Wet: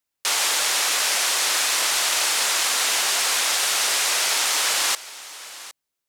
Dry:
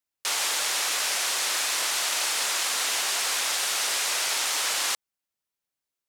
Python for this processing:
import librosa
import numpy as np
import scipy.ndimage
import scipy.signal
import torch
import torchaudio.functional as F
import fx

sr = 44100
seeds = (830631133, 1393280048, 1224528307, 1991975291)

y = x + 10.0 ** (-17.0 / 20.0) * np.pad(x, (int(761 * sr / 1000.0), 0))[:len(x)]
y = y * librosa.db_to_amplitude(5.0)